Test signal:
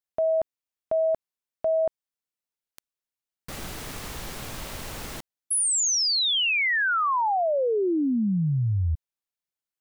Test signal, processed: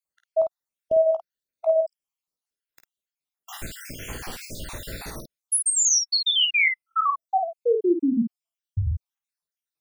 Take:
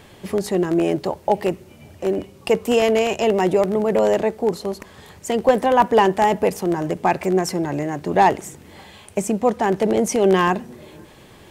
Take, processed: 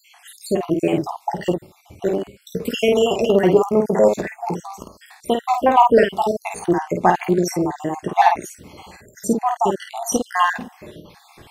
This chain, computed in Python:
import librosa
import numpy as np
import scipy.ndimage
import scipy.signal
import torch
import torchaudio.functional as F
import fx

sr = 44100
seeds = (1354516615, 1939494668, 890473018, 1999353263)

y = fx.spec_dropout(x, sr, seeds[0], share_pct=67)
y = fx.room_early_taps(y, sr, ms=(17, 51), db=(-9.5, -5.0))
y = F.gain(torch.from_numpy(y), 3.5).numpy()